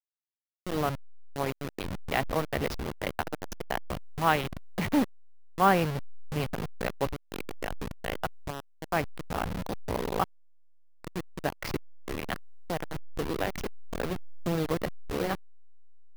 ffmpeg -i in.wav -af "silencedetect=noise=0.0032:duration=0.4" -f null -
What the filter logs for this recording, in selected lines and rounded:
silence_start: 0.00
silence_end: 0.67 | silence_duration: 0.67
silence_start: 10.24
silence_end: 11.04 | silence_duration: 0.81